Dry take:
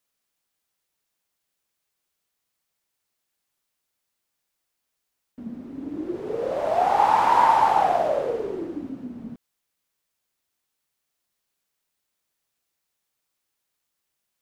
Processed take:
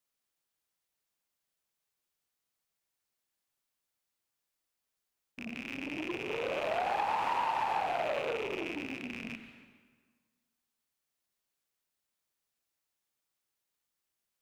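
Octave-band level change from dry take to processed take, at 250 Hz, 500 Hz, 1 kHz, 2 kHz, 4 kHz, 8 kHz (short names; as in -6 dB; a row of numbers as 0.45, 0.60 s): -8.5 dB, -10.0 dB, -13.5 dB, -3.0 dB, -2.5 dB, n/a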